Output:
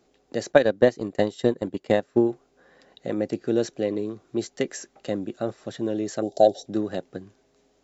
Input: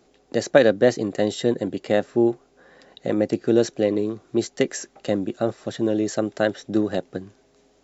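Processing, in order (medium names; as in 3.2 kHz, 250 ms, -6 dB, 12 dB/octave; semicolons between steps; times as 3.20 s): 0.52–2.29 s: transient shaper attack +7 dB, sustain -9 dB; 6.22–6.66 s: FFT filter 260 Hz 0 dB, 760 Hz +14 dB, 1.1 kHz -19 dB, 2.4 kHz -17 dB, 3.8 kHz +6 dB; trim -5 dB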